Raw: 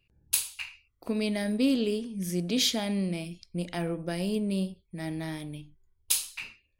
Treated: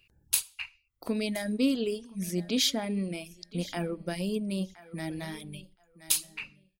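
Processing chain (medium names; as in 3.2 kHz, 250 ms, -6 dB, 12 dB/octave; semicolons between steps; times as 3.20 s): feedback delay 1020 ms, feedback 19%, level -18.5 dB; reverb removal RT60 0.98 s; tape noise reduction on one side only encoder only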